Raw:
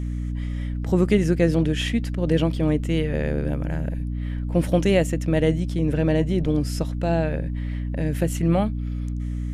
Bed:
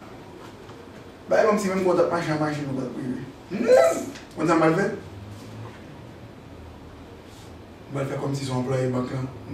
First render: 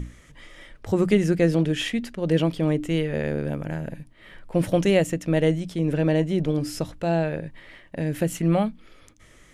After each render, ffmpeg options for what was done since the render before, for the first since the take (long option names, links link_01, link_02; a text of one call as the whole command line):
ffmpeg -i in.wav -af "bandreject=frequency=60:width_type=h:width=6,bandreject=frequency=120:width_type=h:width=6,bandreject=frequency=180:width_type=h:width=6,bandreject=frequency=240:width_type=h:width=6,bandreject=frequency=300:width_type=h:width=6" out.wav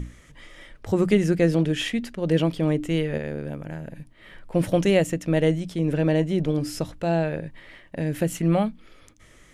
ffmpeg -i in.wav -filter_complex "[0:a]asplit=3[link_01][link_02][link_03];[link_01]atrim=end=3.182[link_04];[link_02]atrim=start=3.178:end=3.962,asetpts=PTS-STARTPTS,volume=-4.5dB[link_05];[link_03]atrim=start=3.958[link_06];[link_04][link_05]acrossfade=duration=0.004:curve1=hsin:curve2=hsin[link_07];[link_07][link_06]acrossfade=duration=0.004:curve1=hsin:curve2=hsin" out.wav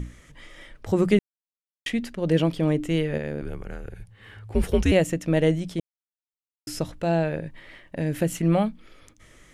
ffmpeg -i in.wav -filter_complex "[0:a]asettb=1/sr,asplit=3[link_01][link_02][link_03];[link_01]atrim=end=3.414[link_04];[link_02]atrim=start=3.41:end=4.92,asetpts=PTS-STARTPTS,afade=type=in:duration=0.004:curve=qsin,afade=type=out:start_time=1.506:duration=0.004:curve=qsin,afreqshift=-120[link_05];[link_03]atrim=start=4.916[link_06];[link_04][link_05]acrossfade=duration=0.004:curve1=hsin:curve2=qsin[link_07];[link_07][link_06]acrossfade=duration=0.004:curve1=qsin:curve2=hsin,asplit=5[link_08][link_09][link_10][link_11][link_12];[link_08]atrim=end=1.19,asetpts=PTS-STARTPTS,afade=type=out:start_time=1.186:duration=0.004:curve=hsin[link_13];[link_09]atrim=start=1.19:end=1.86,asetpts=PTS-STARTPTS,volume=0[link_14];[link_10]atrim=start=1.86:end=5.8,asetpts=PTS-STARTPTS,afade=type=in:duration=0.004:curve=hsin,afade=type=out:start_time=3.936:duration=0.004:curve=hsin[link_15];[link_11]atrim=start=5.8:end=6.67,asetpts=PTS-STARTPTS,volume=0[link_16];[link_12]atrim=start=6.67,asetpts=PTS-STARTPTS,afade=type=in:duration=0.004:curve=hsin[link_17];[link_13][link_14][link_15][link_16][link_17]concat=n=5:v=0:a=1" out.wav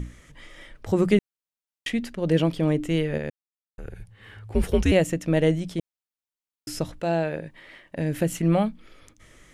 ffmpeg -i in.wav -filter_complex "[0:a]asettb=1/sr,asplit=3[link_01][link_02][link_03];[link_01]atrim=end=7.004[link_04];[link_02]atrim=start=7:end=7.98,asetpts=PTS-STARTPTS,afade=type=in:duration=0.004:curve=qsin,afade=type=out:start_time=0.976:duration=0.004:curve=qsin,lowshelf=frequency=120:gain=-11.5[link_05];[link_03]atrim=start=7.976[link_06];[link_04][link_05]acrossfade=duration=0.004:curve1=hsin:curve2=qsin[link_07];[link_07][link_06]acrossfade=duration=0.004:curve1=qsin:curve2=hsin,asplit=3[link_08][link_09][link_10];[link_08]atrim=end=3.3,asetpts=PTS-STARTPTS,afade=type=out:start_time=3.296:duration=0.004:curve=hsin[link_11];[link_09]atrim=start=3.3:end=3.78,asetpts=PTS-STARTPTS,volume=0[link_12];[link_10]atrim=start=3.78,asetpts=PTS-STARTPTS,afade=type=in:duration=0.004:curve=hsin[link_13];[link_11][link_12][link_13]concat=n=3:v=0:a=1" out.wav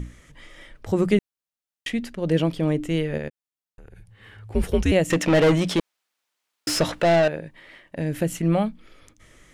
ffmpeg -i in.wav -filter_complex "[0:a]asettb=1/sr,asplit=3[link_01][link_02][link_03];[link_01]atrim=end=3.284[link_04];[link_02]atrim=start=3.28:end=4.39,asetpts=PTS-STARTPTS,afade=type=in:duration=0.004:curve=qsin,afade=type=out:start_time=1.106:duration=0.004:curve=qsin,acompressor=threshold=-42dB:ratio=4:attack=3.2:release=140:knee=1:detection=peak[link_05];[link_03]atrim=start=4.386[link_06];[link_04][link_05]acrossfade=duration=0.004:curve1=hsin:curve2=qsin[link_07];[link_07][link_06]acrossfade=duration=0.004:curve1=qsin:curve2=hsin,asettb=1/sr,asplit=3[link_08][link_09][link_10];[link_08]atrim=end=5.104[link_11];[link_09]atrim=start=5.1:end=7.28,asetpts=PTS-STARTPTS,afade=type=in:duration=0.004:curve=qsin,afade=type=out:start_time=2.176:duration=0.004:curve=qsin,asplit=2[link_12][link_13];[link_13]highpass=frequency=720:poles=1,volume=26dB,asoftclip=type=tanh:threshold=-10dB[link_14];[link_12][link_14]amix=inputs=2:normalize=0,lowpass=frequency=3600:poles=1,volume=-6dB[link_15];[link_10]atrim=start=7.276[link_16];[link_11][link_15]acrossfade=duration=0.004:curve1=hsin:curve2=qsin[link_17];[link_17][link_16]acrossfade=duration=0.004:curve1=qsin:curve2=hsin" out.wav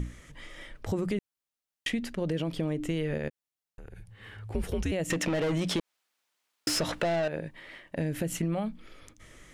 ffmpeg -i in.wav -af "alimiter=limit=-17dB:level=0:latency=1:release=96,acompressor=threshold=-26dB:ratio=6" out.wav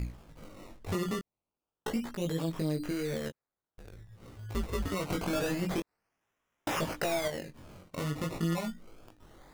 ffmpeg -i in.wav -af "acrusher=samples=19:mix=1:aa=0.000001:lfo=1:lforange=19:lforate=0.27,flanger=delay=17.5:depth=5:speed=0.46" out.wav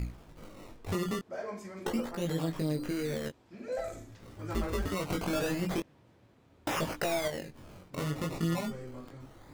ffmpeg -i in.wav -i bed.wav -filter_complex "[1:a]volume=-20dB[link_01];[0:a][link_01]amix=inputs=2:normalize=0" out.wav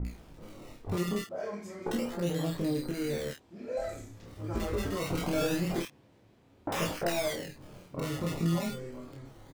ffmpeg -i in.wav -filter_complex "[0:a]asplit=2[link_01][link_02];[link_02]adelay=29,volume=-4dB[link_03];[link_01][link_03]amix=inputs=2:normalize=0,acrossover=split=1300[link_04][link_05];[link_05]adelay=50[link_06];[link_04][link_06]amix=inputs=2:normalize=0" out.wav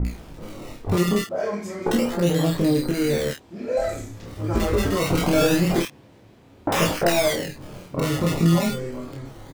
ffmpeg -i in.wav -af "volume=11dB" out.wav